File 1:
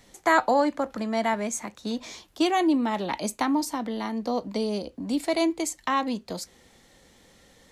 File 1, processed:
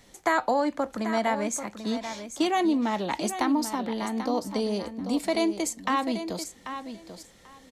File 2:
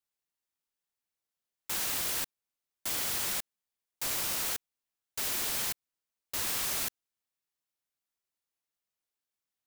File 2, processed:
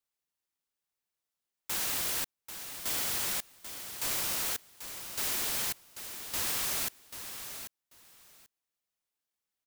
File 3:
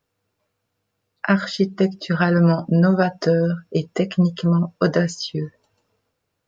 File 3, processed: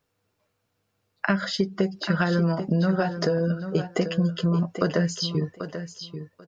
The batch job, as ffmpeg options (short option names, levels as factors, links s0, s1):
-filter_complex "[0:a]acompressor=threshold=0.1:ratio=4,asplit=2[s0][s1];[s1]aecho=0:1:789|1578:0.316|0.0506[s2];[s0][s2]amix=inputs=2:normalize=0"